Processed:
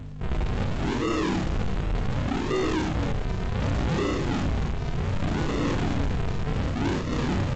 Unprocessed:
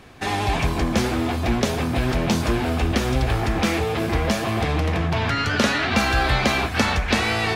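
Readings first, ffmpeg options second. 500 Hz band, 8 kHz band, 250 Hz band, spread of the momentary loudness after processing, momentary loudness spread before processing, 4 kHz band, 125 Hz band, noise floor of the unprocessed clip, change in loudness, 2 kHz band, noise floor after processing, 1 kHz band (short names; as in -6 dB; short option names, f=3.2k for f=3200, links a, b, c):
-5.5 dB, -11.5 dB, -4.0 dB, 4 LU, 3 LU, -11.5 dB, -3.0 dB, -26 dBFS, -6.0 dB, -12.0 dB, -29 dBFS, -9.0 dB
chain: -filter_complex "[0:a]afftdn=nr=16:nf=-30,acompressor=mode=upward:threshold=-33dB:ratio=2.5,alimiter=limit=-16.5dB:level=0:latency=1:release=31,acontrast=60,flanger=delay=4.3:depth=4:regen=-6:speed=0.32:shape=sinusoidal,highpass=f=180:t=q:w=0.5412,highpass=f=180:t=q:w=1.307,lowpass=f=2.4k:t=q:w=0.5176,lowpass=f=2.4k:t=q:w=0.7071,lowpass=f=2.4k:t=q:w=1.932,afreqshift=70,aresample=16000,acrusher=samples=39:mix=1:aa=0.000001:lfo=1:lforange=39:lforate=0.67,aresample=44100,aeval=exprs='val(0)+0.0158*(sin(2*PI*50*n/s)+sin(2*PI*2*50*n/s)/2+sin(2*PI*3*50*n/s)/3+sin(2*PI*4*50*n/s)/4+sin(2*PI*5*50*n/s)/5)':c=same,asplit=2[a][b];[b]adelay=32,volume=-3.5dB[c];[a][c]amix=inputs=2:normalize=0,asplit=2[d][e];[e]aecho=0:1:53|74:0.251|0.355[f];[d][f]amix=inputs=2:normalize=0,asoftclip=type=tanh:threshold=-21dB" -ar 16000 -c:a g722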